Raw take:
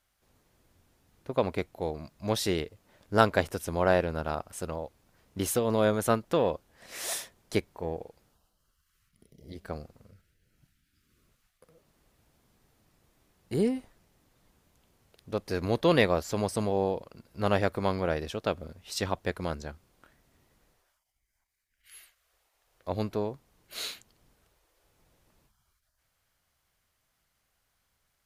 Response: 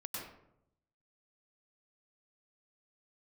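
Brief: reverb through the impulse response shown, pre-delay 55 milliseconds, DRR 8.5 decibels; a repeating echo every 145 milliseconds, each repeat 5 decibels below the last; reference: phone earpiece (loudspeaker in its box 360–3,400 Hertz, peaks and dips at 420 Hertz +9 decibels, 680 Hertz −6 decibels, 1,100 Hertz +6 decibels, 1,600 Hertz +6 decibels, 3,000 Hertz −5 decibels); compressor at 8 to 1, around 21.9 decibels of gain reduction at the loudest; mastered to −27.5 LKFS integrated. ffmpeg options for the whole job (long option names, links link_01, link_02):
-filter_complex "[0:a]acompressor=threshold=-38dB:ratio=8,aecho=1:1:145|290|435|580|725|870|1015:0.562|0.315|0.176|0.0988|0.0553|0.031|0.0173,asplit=2[link_01][link_02];[1:a]atrim=start_sample=2205,adelay=55[link_03];[link_02][link_03]afir=irnorm=-1:irlink=0,volume=-8.5dB[link_04];[link_01][link_04]amix=inputs=2:normalize=0,highpass=360,equalizer=frequency=420:width_type=q:width=4:gain=9,equalizer=frequency=680:width_type=q:width=4:gain=-6,equalizer=frequency=1100:width_type=q:width=4:gain=6,equalizer=frequency=1600:width_type=q:width=4:gain=6,equalizer=frequency=3000:width_type=q:width=4:gain=-5,lowpass=frequency=3400:width=0.5412,lowpass=frequency=3400:width=1.3066,volume=14.5dB"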